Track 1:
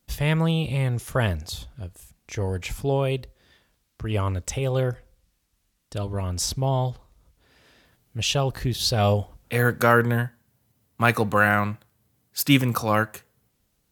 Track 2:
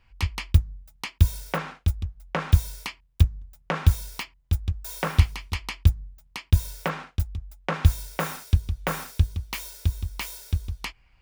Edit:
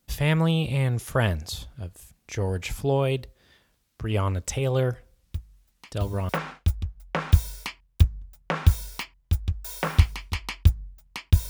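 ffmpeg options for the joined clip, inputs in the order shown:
ffmpeg -i cue0.wav -i cue1.wav -filter_complex "[1:a]asplit=2[link_01][link_02];[0:a]apad=whole_dur=11.49,atrim=end=11.49,atrim=end=6.292[link_03];[link_02]atrim=start=1.488:end=6.69[link_04];[link_01]atrim=start=0.51:end=1.49,asetpts=PTS-STARTPTS,volume=-15dB,afade=type=in:duration=0.004:curve=hsin,afade=type=out:start_time=0.976:duration=0.004:curve=hsin,adelay=5310[link_05];[link_03][link_04]acrossfade=duration=0.004:curve1=hsin:curve2=hsin[link_06];[link_06][link_05]amix=inputs=2:normalize=0" out.wav

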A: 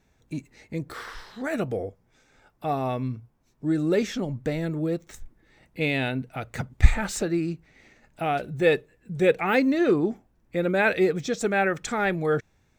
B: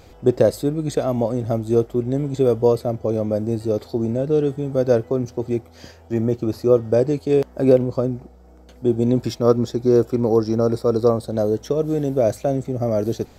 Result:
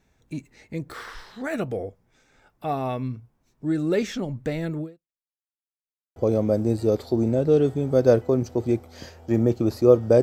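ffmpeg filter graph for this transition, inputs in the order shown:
ffmpeg -i cue0.wav -i cue1.wav -filter_complex "[0:a]apad=whole_dur=10.22,atrim=end=10.22,asplit=2[link_01][link_02];[link_01]atrim=end=5.32,asetpts=PTS-STARTPTS,afade=type=out:start_time=4.81:duration=0.51:curve=exp[link_03];[link_02]atrim=start=5.32:end=6.16,asetpts=PTS-STARTPTS,volume=0[link_04];[1:a]atrim=start=2.98:end=7.04,asetpts=PTS-STARTPTS,afade=type=in:duration=0.004:curve=hsin[link_05];[link_03][link_04][link_05]concat=n=3:v=0:a=1" out.wav

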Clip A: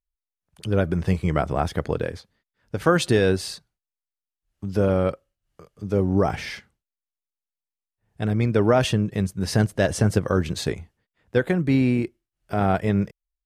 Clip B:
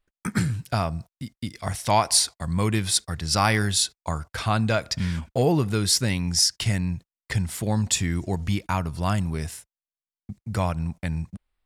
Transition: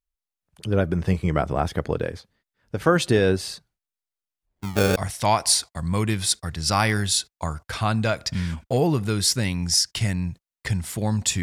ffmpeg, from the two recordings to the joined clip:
ffmpeg -i cue0.wav -i cue1.wav -filter_complex "[0:a]asplit=3[link_01][link_02][link_03];[link_01]afade=type=out:start_time=4.45:duration=0.02[link_04];[link_02]acrusher=samples=25:mix=1:aa=0.000001:lfo=1:lforange=40:lforate=0.67,afade=type=in:start_time=4.45:duration=0.02,afade=type=out:start_time=4.96:duration=0.02[link_05];[link_03]afade=type=in:start_time=4.96:duration=0.02[link_06];[link_04][link_05][link_06]amix=inputs=3:normalize=0,apad=whole_dur=11.42,atrim=end=11.42,atrim=end=4.962[link_07];[1:a]atrim=start=1.608:end=8.07[link_08];[link_07][link_08]acrossfade=duration=0.004:curve1=hsin:curve2=hsin" out.wav

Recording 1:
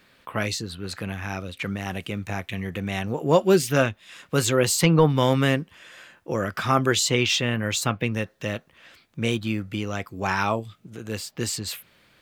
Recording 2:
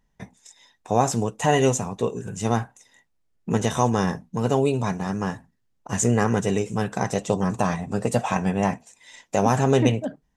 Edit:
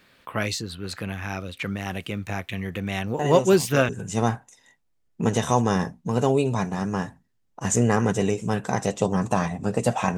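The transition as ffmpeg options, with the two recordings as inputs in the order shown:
ffmpeg -i cue0.wav -i cue1.wav -filter_complex "[1:a]asplit=2[link_01][link_02];[0:a]apad=whole_dur=10.17,atrim=end=10.17,atrim=end=3.892[link_03];[link_02]atrim=start=2.168:end=8.45[link_04];[link_01]atrim=start=1.47:end=2.17,asetpts=PTS-STARTPTS,volume=-8.5dB,afade=type=in:duration=0.004:curve=hsin,afade=type=out:start_time=0.696:duration=0.004:curve=hsin,adelay=3190[link_05];[link_03][link_04]acrossfade=duration=0.004:curve1=hsin:curve2=hsin[link_06];[link_06][link_05]amix=inputs=2:normalize=0" out.wav

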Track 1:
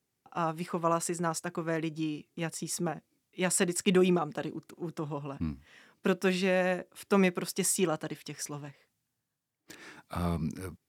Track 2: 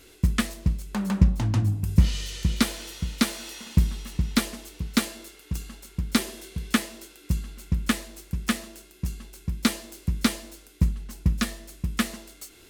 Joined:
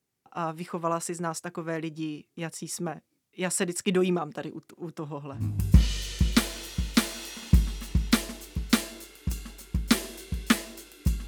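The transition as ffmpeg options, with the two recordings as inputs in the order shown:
ffmpeg -i cue0.wav -i cue1.wav -filter_complex "[0:a]apad=whole_dur=11.27,atrim=end=11.27,atrim=end=5.6,asetpts=PTS-STARTPTS[link_01];[1:a]atrim=start=1.56:end=7.51,asetpts=PTS-STARTPTS[link_02];[link_01][link_02]acrossfade=duration=0.28:curve1=tri:curve2=tri" out.wav

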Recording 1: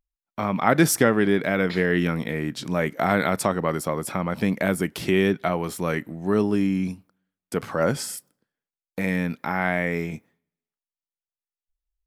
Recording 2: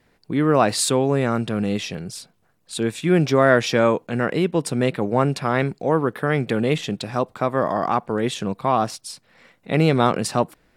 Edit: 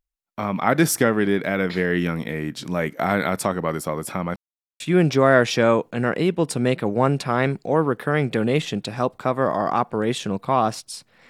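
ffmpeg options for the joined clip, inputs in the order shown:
ffmpeg -i cue0.wav -i cue1.wav -filter_complex "[0:a]apad=whole_dur=11.29,atrim=end=11.29,asplit=2[link_01][link_02];[link_01]atrim=end=4.36,asetpts=PTS-STARTPTS,afade=type=out:start_time=4.356:duration=0.004:curve=hsin[link_03];[link_02]atrim=start=4.36:end=4.8,asetpts=PTS-STARTPTS,volume=0[link_04];[1:a]atrim=start=2.96:end=9.45,asetpts=PTS-STARTPTS,afade=type=in:duration=0.004:curve=hsin[link_05];[link_03][link_04][link_05]concat=n=3:v=0:a=1" out.wav

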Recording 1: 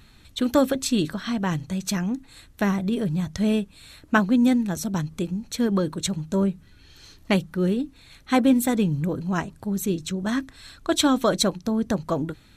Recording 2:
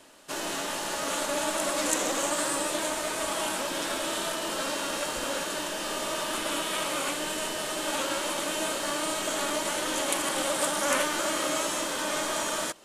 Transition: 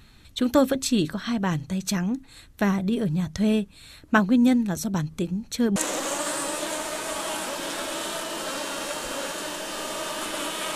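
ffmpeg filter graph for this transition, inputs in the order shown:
ffmpeg -i cue0.wav -i cue1.wav -filter_complex "[0:a]apad=whole_dur=10.75,atrim=end=10.75,atrim=end=5.762[link_01];[1:a]atrim=start=1.878:end=6.87[link_02];[link_01][link_02]acrossfade=duration=0.004:curve1=hsin:curve2=hsin" out.wav

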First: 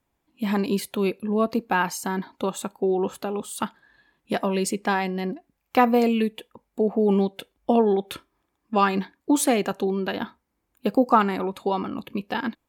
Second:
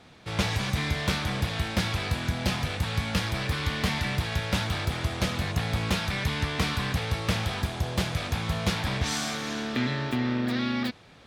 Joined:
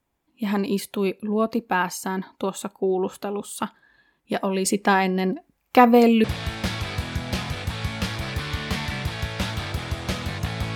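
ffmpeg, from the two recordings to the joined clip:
ffmpeg -i cue0.wav -i cue1.wav -filter_complex "[0:a]asettb=1/sr,asplit=3[link_01][link_02][link_03];[link_01]atrim=end=4.654[link_04];[link_02]atrim=start=4.65:end=6.24,asetpts=PTS-STARTPTS,afade=type=in:duration=0.004:curve=qsin,afade=type=out:start_time=1.586:duration=0.004:curve=qsin,acontrast=22[link_05];[link_03]atrim=start=6.236[link_06];[link_04][link_05]acrossfade=duration=0.004:curve1=hsin:curve2=qsin[link_07];[link_07][link_06]acrossfade=duration=0.004:curve1=qsin:curve2=hsin,apad=whole_dur=10.75,atrim=end=10.75,atrim=end=6.242[link_08];[1:a]atrim=start=1.368:end=5.88[link_09];[link_08][link_09]acrossfade=duration=0.004:curve1=hsin:curve2=hsin" out.wav

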